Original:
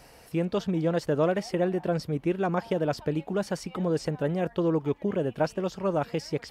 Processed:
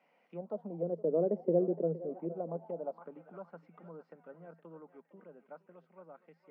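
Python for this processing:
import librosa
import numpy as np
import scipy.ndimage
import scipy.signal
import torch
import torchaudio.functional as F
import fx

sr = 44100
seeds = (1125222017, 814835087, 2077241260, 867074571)

y = fx.doppler_pass(x, sr, speed_mps=16, closest_m=5.3, pass_at_s=1.51)
y = scipy.signal.sosfilt(scipy.signal.cheby1(6, 6, 160.0, 'highpass', fs=sr, output='sos'), y)
y = fx.notch(y, sr, hz=1700.0, q=7.3)
y = fx.echo_thinned(y, sr, ms=465, feedback_pct=35, hz=760.0, wet_db=-11.0)
y = fx.envelope_lowpass(y, sr, base_hz=430.0, top_hz=2300.0, q=2.9, full_db=-33.0, direction='down')
y = y * librosa.db_to_amplitude(-3.5)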